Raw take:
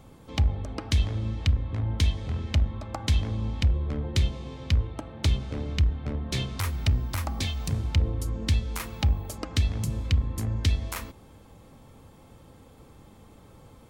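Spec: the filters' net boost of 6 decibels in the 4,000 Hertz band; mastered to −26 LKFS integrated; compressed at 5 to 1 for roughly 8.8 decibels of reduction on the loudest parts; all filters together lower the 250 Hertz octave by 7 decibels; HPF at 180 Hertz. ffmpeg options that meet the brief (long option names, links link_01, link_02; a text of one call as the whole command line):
ffmpeg -i in.wav -af "highpass=180,equalizer=frequency=250:width_type=o:gain=-7,equalizer=frequency=4000:width_type=o:gain=7.5,acompressor=threshold=-35dB:ratio=5,volume=14dB" out.wav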